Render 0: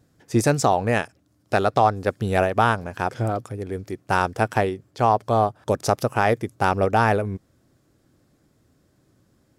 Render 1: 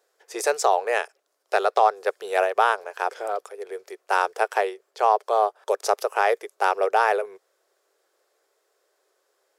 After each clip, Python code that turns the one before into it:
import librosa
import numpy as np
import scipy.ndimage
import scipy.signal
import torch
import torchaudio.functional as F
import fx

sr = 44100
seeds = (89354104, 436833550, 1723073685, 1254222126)

y = scipy.signal.sosfilt(scipy.signal.ellip(4, 1.0, 40, 410.0, 'highpass', fs=sr, output='sos'), x)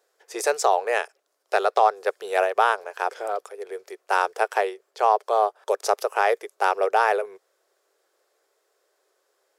y = x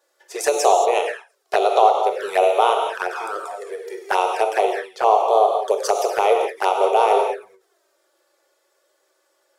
y = fx.rev_gated(x, sr, seeds[0], gate_ms=250, shape='flat', drr_db=1.5)
y = fx.env_flanger(y, sr, rest_ms=3.5, full_db=-18.0)
y = fx.end_taper(y, sr, db_per_s=180.0)
y = y * 10.0 ** (5.5 / 20.0)